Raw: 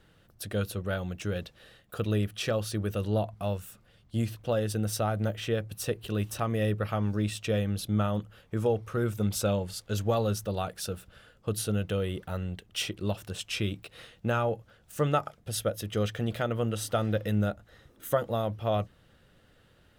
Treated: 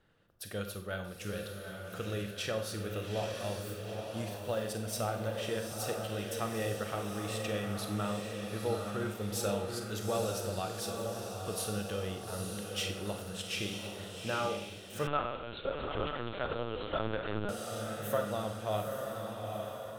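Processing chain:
feedback delay with all-pass diffusion 859 ms, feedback 54%, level −4 dB
four-comb reverb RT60 0.55 s, combs from 32 ms, DRR 6 dB
0:15.07–0:17.49: linear-prediction vocoder at 8 kHz pitch kept
low-shelf EQ 380 Hz −7 dB
one half of a high-frequency compander decoder only
level −4.5 dB

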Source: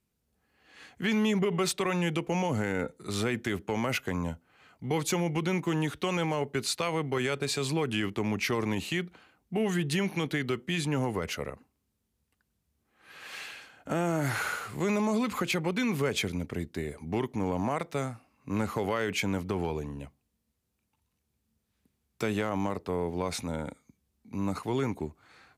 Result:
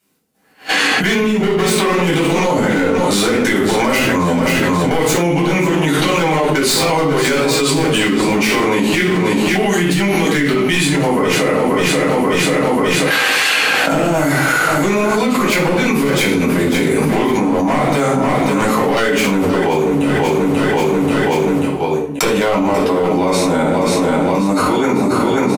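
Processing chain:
fade-out on the ending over 3.01 s
high-pass filter 270 Hz 12 dB per octave
downward expander −56 dBFS
high-shelf EQ 4,200 Hz +3.5 dB
wave folding −24 dBFS
square-wave tremolo 2.9 Hz, depth 60%, duty 50%
repeating echo 536 ms, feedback 44%, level −13 dB
rectangular room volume 750 cubic metres, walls furnished, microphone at 7.6 metres
envelope flattener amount 100%
level +2 dB

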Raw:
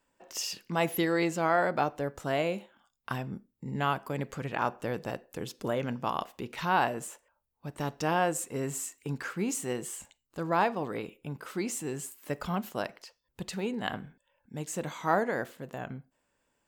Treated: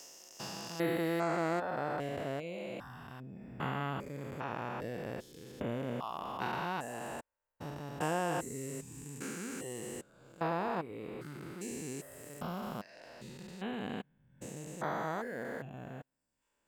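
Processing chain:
spectrum averaged block by block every 400 ms
reverb reduction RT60 0.72 s
0:03.36–0:03.90: parametric band 2,000 Hz +7.5 dB 0.45 octaves

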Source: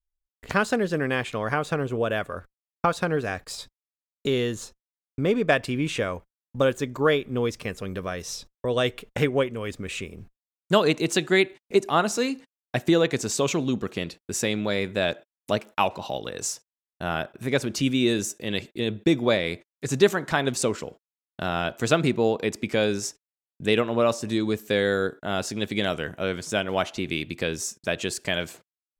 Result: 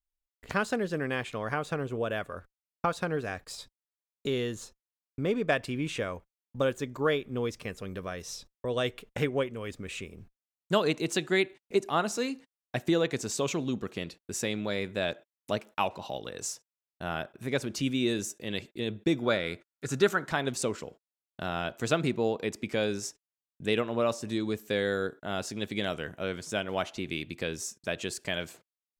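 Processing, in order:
0:19.20–0:20.26: parametric band 1,400 Hz +12.5 dB 0.24 octaves
level −6 dB

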